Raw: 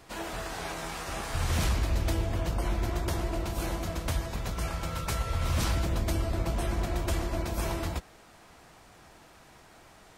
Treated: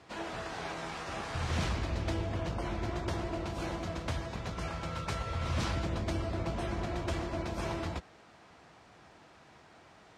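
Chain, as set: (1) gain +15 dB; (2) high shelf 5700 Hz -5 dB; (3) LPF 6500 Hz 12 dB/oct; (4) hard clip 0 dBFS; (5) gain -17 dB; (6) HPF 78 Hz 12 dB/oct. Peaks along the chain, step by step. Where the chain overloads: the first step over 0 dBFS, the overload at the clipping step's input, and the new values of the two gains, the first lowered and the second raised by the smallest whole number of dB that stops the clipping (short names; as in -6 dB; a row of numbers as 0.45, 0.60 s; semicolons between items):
-3.0, -3.5, -3.5, -3.5, -20.5, -20.5 dBFS; no overload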